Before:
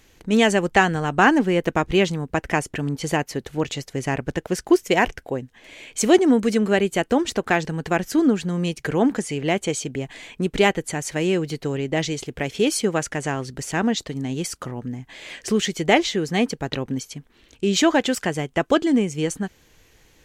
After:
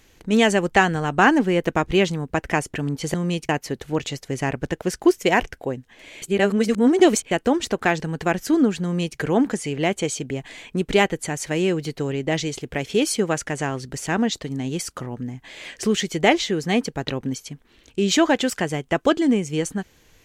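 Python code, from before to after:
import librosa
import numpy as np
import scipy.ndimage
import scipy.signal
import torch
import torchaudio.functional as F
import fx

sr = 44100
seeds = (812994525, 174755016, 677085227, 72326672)

y = fx.edit(x, sr, fx.reverse_span(start_s=5.87, length_s=1.09),
    fx.duplicate(start_s=8.48, length_s=0.35, to_s=3.14), tone=tone)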